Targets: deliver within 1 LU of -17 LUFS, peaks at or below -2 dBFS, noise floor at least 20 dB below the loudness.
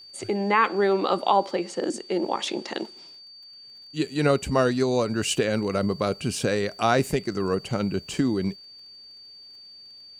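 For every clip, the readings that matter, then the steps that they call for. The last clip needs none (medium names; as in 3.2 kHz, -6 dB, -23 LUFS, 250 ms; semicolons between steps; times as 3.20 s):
tick rate 25 per s; steady tone 4.6 kHz; tone level -44 dBFS; loudness -25.0 LUFS; peak level -7.0 dBFS; loudness target -17.0 LUFS
-> de-click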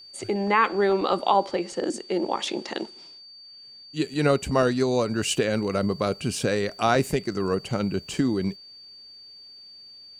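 tick rate 0.098 per s; steady tone 4.6 kHz; tone level -44 dBFS
-> band-stop 4.6 kHz, Q 30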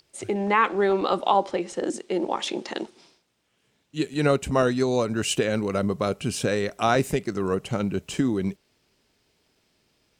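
steady tone not found; loudness -25.0 LUFS; peak level -7.0 dBFS; loudness target -17.0 LUFS
-> trim +8 dB; peak limiter -2 dBFS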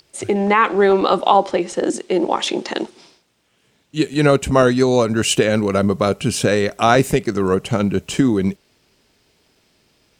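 loudness -17.5 LUFS; peak level -2.0 dBFS; noise floor -62 dBFS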